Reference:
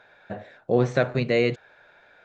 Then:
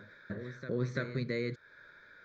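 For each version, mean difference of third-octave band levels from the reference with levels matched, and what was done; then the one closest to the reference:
6.0 dB: downward compressor 2 to 1, threshold −35 dBFS, peak gain reduction 11 dB
phaser with its sweep stopped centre 2,800 Hz, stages 6
backwards echo 339 ms −10.5 dB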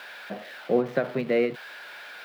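8.0 dB: spike at every zero crossing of −19.5 dBFS
Butterworth high-pass 160 Hz 36 dB per octave
high-frequency loss of the air 410 metres
every ending faded ahead of time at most 180 dB per second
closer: first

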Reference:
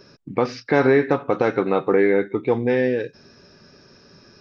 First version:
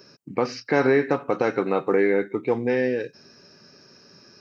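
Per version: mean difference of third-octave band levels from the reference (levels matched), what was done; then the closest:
1.0 dB: high-pass filter 120 Hz
high-shelf EQ 5,100 Hz +9.5 dB
notch filter 3,500 Hz, Q 5.9
level −3 dB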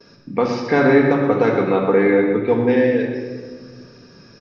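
4.0 dB: noise gate with hold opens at −43 dBFS
on a send: single-tap delay 124 ms −10 dB
on the sum: rectangular room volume 1,900 cubic metres, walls mixed, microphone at 1.7 metres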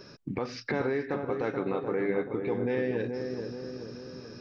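6.5 dB: downward compressor 4 to 1, threshold −27 dBFS, peak gain reduction 13 dB
brickwall limiter −20 dBFS, peak gain reduction 6.5 dB
feedback echo with a low-pass in the loop 430 ms, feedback 60%, low-pass 930 Hz, level −4.5 dB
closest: first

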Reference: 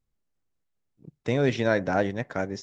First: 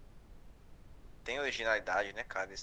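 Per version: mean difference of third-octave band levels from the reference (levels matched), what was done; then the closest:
8.0 dB: high-pass filter 870 Hz 12 dB per octave
background noise brown −51 dBFS
level −2.5 dB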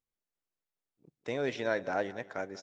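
3.0 dB: bass and treble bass −12 dB, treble −1 dB
on a send: repeating echo 188 ms, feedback 35%, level −18 dB
on the sum: level −6.5 dB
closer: second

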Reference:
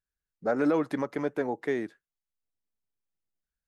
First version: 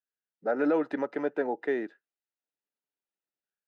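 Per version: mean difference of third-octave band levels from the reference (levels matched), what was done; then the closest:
4.0 dB: automatic gain control gain up to 5.5 dB
band-pass filter 270–3,200 Hz
notch comb filter 1,100 Hz
level −4 dB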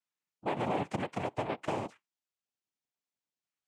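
8.5 dB: high-pass filter 200 Hz
downward compressor 4 to 1, threshold −30 dBFS, peak gain reduction 7.5 dB
cochlear-implant simulation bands 4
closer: first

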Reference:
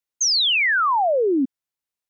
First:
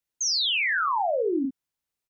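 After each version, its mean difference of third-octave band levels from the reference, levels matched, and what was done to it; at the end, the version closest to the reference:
1.0 dB: low-shelf EQ 220 Hz +6.5 dB
brickwall limiter −23 dBFS, peak gain reduction 10 dB
ambience of single reflections 41 ms −8 dB, 52 ms −7.5 dB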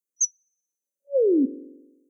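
4.0 dB: Butterworth high-pass 170 Hz
spring reverb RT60 1.1 s, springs 44 ms, DRR 15 dB
brick-wall band-stop 570–5,900 Hz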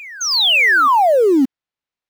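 12.5 dB: low-pass filter 4,000 Hz 12 dB per octave
in parallel at −8 dB: log-companded quantiser 4 bits
on the sum: backwards echo 575 ms −21 dB
level +4 dB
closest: first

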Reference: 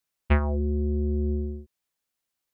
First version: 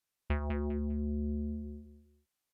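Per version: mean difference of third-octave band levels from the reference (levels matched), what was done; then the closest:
4.0 dB: downward compressor 3 to 1, threshold −30 dBFS, peak gain reduction 9.5 dB
repeating echo 200 ms, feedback 26%, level −5 dB
downsampling to 32,000 Hz
level −3 dB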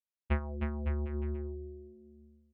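6.5 dB: high-frequency loss of the air 71 metres
on a send: bouncing-ball delay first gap 310 ms, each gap 0.8×, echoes 5
on the sum: expander for the loud parts 1.5 to 1, over −39 dBFS
level −8.5 dB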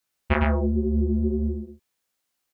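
2.5 dB: low-shelf EQ 110 Hz −4 dB
chorus effect 2.1 Hz, delay 17 ms, depth 6 ms
single-tap delay 108 ms −3.5 dB
level +7 dB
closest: third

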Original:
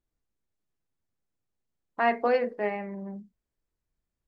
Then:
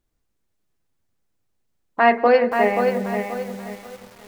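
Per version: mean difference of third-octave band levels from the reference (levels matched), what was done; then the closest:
7.0 dB: on a send: echo machine with several playback heads 178 ms, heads first and second, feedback 52%, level −21 dB
on the sum: feedback echo at a low word length 530 ms, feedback 35%, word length 8 bits, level −6 dB
level +9 dB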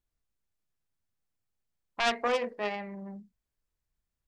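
4.0 dB: phase distortion by the signal itself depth 0.27 ms
parametric band 330 Hz −6 dB 2 octaves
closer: second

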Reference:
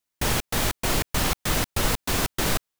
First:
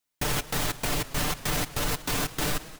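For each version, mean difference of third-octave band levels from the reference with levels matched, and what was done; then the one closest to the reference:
2.5 dB: comb filter 6.8 ms, depth 56%
brickwall limiter −17.5 dBFS, peak gain reduction 8.5 dB
feedback echo with a swinging delay time 184 ms, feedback 57%, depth 147 cents, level −17 dB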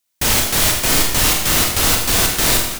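5.5 dB: high-shelf EQ 2,400 Hz +8.5 dB
on a send: single-tap delay 321 ms −14 dB
on the sum: four-comb reverb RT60 0.87 s, combs from 25 ms, DRR 0.5 dB
level +2.5 dB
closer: first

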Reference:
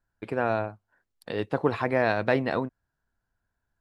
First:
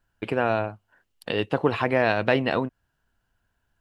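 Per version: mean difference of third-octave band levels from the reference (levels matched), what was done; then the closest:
1.5 dB: parametric band 2,900 Hz +10 dB 0.33 octaves
in parallel at +1 dB: downward compressor, threshold −32 dBFS, peak gain reduction 13.5 dB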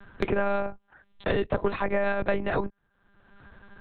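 6.5 dB: one-pitch LPC vocoder at 8 kHz 200 Hz
multiband upward and downward compressor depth 100%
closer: first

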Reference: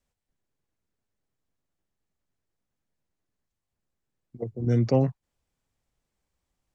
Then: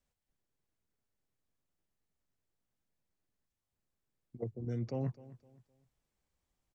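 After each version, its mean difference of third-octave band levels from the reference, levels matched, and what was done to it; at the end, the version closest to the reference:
2.5 dB: reversed playback
downward compressor 8 to 1, threshold −29 dBFS, peak gain reduction 13 dB
reversed playback
repeating echo 257 ms, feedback 33%, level −18.5 dB
level −4 dB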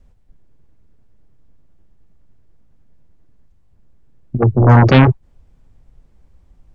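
6.0 dB: spectral tilt −3.5 dB per octave
in parallel at −9.5 dB: sine wavefolder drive 17 dB, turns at −5 dBFS
on the sum: level +3.5 dB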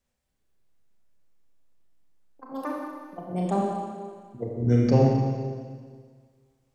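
4.0 dB: delay with pitch and tempo change per echo 229 ms, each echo +7 semitones, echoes 2, each echo −6 dB
four-comb reverb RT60 1.8 s, combs from 29 ms, DRR −2 dB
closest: first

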